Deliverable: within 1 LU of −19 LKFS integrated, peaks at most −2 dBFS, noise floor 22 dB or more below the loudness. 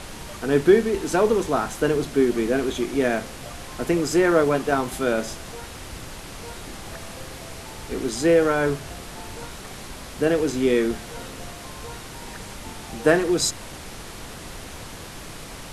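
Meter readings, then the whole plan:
background noise floor −38 dBFS; target noise floor −44 dBFS; integrated loudness −22.0 LKFS; sample peak −3.0 dBFS; target loudness −19.0 LKFS
→ noise reduction from a noise print 6 dB
level +3 dB
brickwall limiter −2 dBFS

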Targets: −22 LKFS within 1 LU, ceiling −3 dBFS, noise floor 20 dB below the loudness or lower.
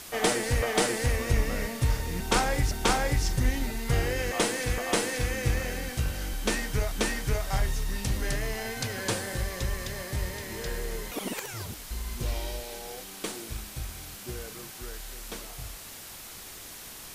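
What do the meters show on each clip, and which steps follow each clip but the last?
background noise floor −44 dBFS; target noise floor −51 dBFS; integrated loudness −30.5 LKFS; sample peak −13.0 dBFS; target loudness −22.0 LKFS
→ noise reduction from a noise print 7 dB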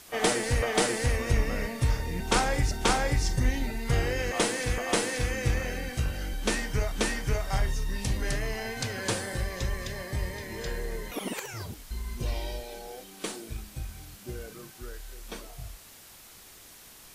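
background noise floor −51 dBFS; integrated loudness −30.0 LKFS; sample peak −13.0 dBFS; target loudness −22.0 LKFS
→ level +8 dB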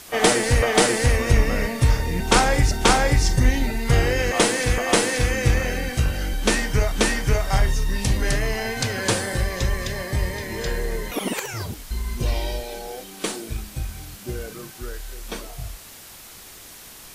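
integrated loudness −22.0 LKFS; sample peak −5.0 dBFS; background noise floor −43 dBFS

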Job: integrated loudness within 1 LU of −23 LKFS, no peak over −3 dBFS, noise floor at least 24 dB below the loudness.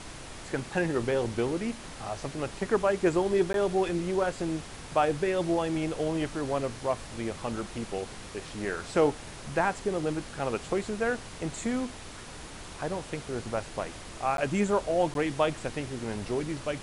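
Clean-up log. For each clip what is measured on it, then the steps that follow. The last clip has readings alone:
number of dropouts 3; longest dropout 12 ms; background noise floor −44 dBFS; target noise floor −55 dBFS; integrated loudness −30.5 LKFS; sample peak −12.0 dBFS; target loudness −23.0 LKFS
→ repair the gap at 0:03.53/0:14.37/0:15.14, 12 ms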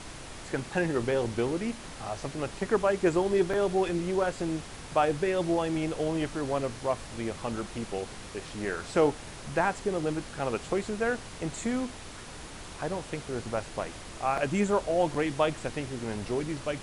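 number of dropouts 0; background noise floor −44 dBFS; target noise floor −55 dBFS
→ noise reduction from a noise print 11 dB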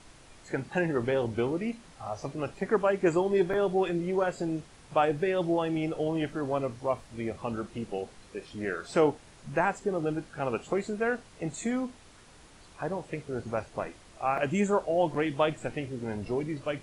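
background noise floor −54 dBFS; target noise floor −55 dBFS
→ noise reduction from a noise print 6 dB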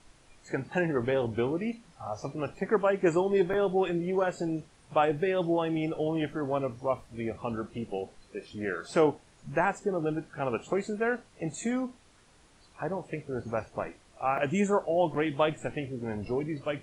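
background noise floor −60 dBFS; integrated loudness −30.5 LKFS; sample peak −12.5 dBFS; target loudness −23.0 LKFS
→ level +7.5 dB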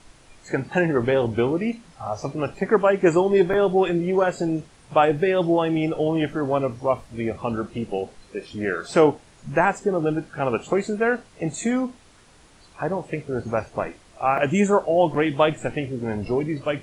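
integrated loudness −23.0 LKFS; sample peak −5.0 dBFS; background noise floor −52 dBFS

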